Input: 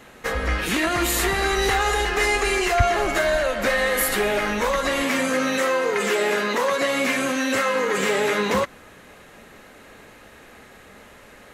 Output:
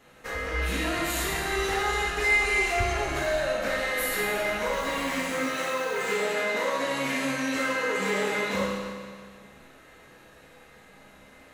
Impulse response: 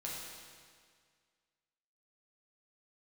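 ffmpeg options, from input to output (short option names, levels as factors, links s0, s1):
-filter_complex "[0:a]asettb=1/sr,asplit=3[s0][s1][s2];[s0]atrim=end=4.734[s3];[s1]atrim=start=4.73:end=6.1,asetpts=PTS-STARTPTS,afade=t=in:d=0.004:c=qsin,afade=t=out:st=1.366:d=0.004:c=qsin,acrusher=bits=5:mix=0:aa=0.5[s4];[s2]atrim=start=6.096[s5];[s3][s4]acrossfade=d=0.004:c1=hsin:c2=qsin[s6];[s6][s5]acrossfade=d=0.004:c1=qsin:c2=hsin[s7];[1:a]atrim=start_sample=2205[s8];[s7][s8]afir=irnorm=-1:irlink=0,volume=0.473"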